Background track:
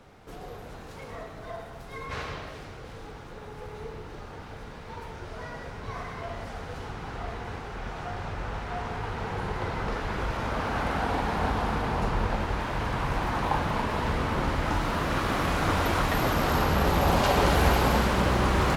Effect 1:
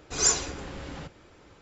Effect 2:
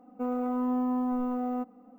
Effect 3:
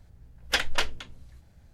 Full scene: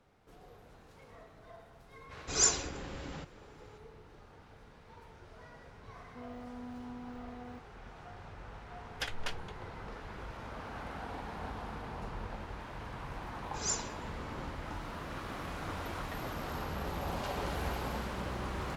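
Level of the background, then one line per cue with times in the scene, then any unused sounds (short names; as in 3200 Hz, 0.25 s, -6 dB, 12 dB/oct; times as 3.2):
background track -14.5 dB
2.17 add 1 -4 dB
5.96 add 2 -17 dB + robotiser 123 Hz
8.48 add 3 -13 dB
13.43 add 1 -12 dB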